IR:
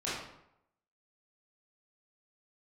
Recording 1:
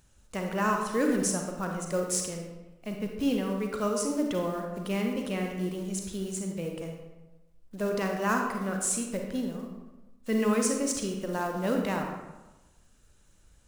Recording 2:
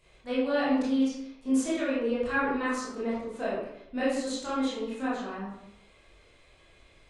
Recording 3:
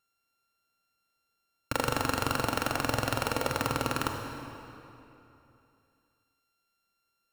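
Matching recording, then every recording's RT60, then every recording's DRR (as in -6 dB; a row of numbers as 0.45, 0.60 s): 2; 1.1, 0.80, 3.0 s; 2.0, -10.5, 3.5 dB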